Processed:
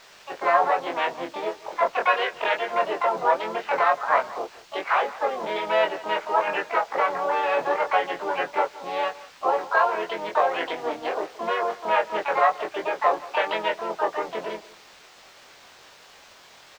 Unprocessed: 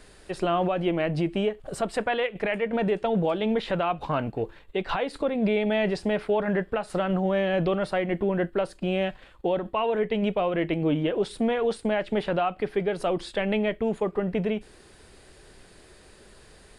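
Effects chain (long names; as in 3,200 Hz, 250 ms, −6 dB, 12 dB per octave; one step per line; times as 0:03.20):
adaptive Wiener filter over 15 samples
Chebyshev band-pass filter 710–2,000 Hz, order 2
background noise blue −45 dBFS
pitch-shifted copies added −4 semitones −8 dB, +7 semitones −1 dB
harmonic and percussive parts rebalanced percussive +3 dB
in parallel at −11.5 dB: bit reduction 6 bits
on the sum: high-frequency loss of the air 180 metres
double-tracking delay 23 ms −3.5 dB
single-tap delay 175 ms −19 dB
level +2 dB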